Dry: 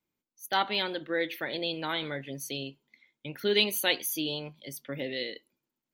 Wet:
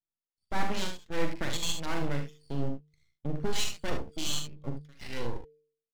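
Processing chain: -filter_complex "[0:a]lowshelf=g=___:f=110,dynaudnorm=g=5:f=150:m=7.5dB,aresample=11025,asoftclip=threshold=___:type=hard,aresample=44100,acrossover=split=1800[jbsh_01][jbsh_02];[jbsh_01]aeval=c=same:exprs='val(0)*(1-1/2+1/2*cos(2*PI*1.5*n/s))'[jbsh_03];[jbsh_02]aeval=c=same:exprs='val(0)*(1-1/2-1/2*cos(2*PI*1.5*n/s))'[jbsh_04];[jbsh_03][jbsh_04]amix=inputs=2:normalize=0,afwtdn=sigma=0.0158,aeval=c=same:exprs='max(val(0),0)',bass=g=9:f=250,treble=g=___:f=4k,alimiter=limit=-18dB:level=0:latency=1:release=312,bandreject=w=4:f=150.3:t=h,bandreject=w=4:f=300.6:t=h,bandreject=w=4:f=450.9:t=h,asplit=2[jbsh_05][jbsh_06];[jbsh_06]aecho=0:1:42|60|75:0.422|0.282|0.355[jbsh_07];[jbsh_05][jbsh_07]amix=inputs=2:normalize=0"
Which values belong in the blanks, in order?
-3.5, -21dB, 7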